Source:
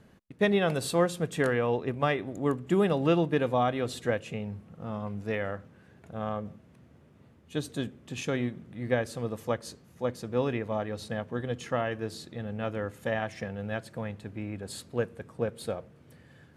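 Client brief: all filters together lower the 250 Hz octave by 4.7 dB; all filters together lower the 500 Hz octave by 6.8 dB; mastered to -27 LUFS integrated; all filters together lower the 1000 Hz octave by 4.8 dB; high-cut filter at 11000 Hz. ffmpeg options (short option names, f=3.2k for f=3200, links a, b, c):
-af "lowpass=11k,equalizer=f=250:t=o:g=-4.5,equalizer=f=500:t=o:g=-6,equalizer=f=1k:t=o:g=-4,volume=8.5dB"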